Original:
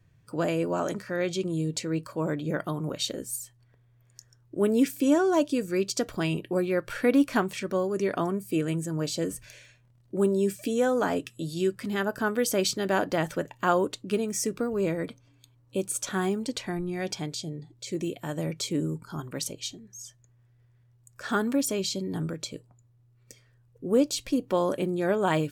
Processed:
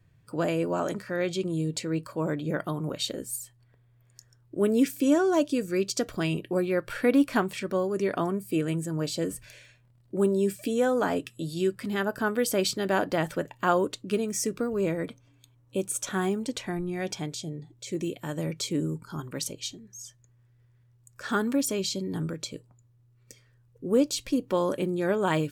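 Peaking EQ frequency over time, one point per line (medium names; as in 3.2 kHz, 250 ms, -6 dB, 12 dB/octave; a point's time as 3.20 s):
peaking EQ -5 dB 0.27 oct
6 kHz
from 4.60 s 890 Hz
from 6.51 s 6.2 kHz
from 13.77 s 810 Hz
from 14.81 s 4.6 kHz
from 17.97 s 700 Hz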